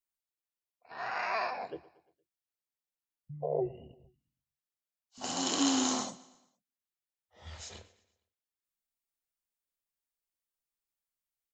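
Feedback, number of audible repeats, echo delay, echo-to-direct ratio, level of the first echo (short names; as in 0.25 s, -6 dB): 50%, 3, 0.116 s, -19.0 dB, -20.0 dB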